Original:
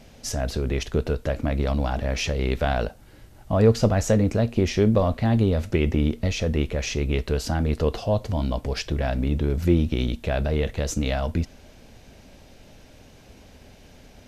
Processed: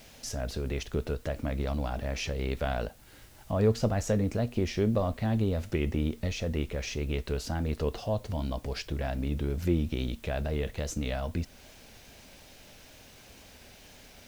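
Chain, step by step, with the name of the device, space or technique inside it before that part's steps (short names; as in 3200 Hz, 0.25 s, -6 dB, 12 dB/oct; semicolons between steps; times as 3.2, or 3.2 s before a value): noise-reduction cassette on a plain deck (mismatched tape noise reduction encoder only; wow and flutter; white noise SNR 31 dB); gain -7.5 dB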